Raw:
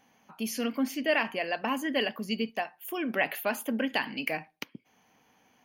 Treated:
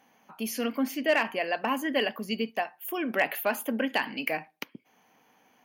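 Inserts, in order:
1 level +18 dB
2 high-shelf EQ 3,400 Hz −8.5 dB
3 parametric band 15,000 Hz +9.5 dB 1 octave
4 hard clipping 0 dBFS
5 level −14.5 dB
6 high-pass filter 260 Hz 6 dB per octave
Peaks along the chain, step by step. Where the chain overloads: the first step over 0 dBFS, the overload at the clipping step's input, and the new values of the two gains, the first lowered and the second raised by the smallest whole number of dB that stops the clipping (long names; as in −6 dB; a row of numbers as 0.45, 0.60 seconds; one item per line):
+4.5, +3.0, +3.0, 0.0, −14.5, −13.0 dBFS
step 1, 3.0 dB
step 1 +15 dB, step 5 −11.5 dB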